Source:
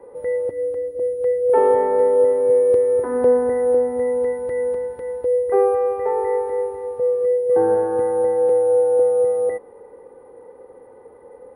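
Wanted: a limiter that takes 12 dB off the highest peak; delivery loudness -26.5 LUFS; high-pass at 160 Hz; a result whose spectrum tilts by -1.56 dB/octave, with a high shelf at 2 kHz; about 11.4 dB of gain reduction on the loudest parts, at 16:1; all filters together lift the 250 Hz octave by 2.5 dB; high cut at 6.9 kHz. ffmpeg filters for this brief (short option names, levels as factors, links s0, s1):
-af "highpass=160,lowpass=6900,equalizer=f=250:t=o:g=4,highshelf=f=2000:g=-7.5,acompressor=threshold=0.0708:ratio=16,volume=2,alimiter=limit=0.0891:level=0:latency=1"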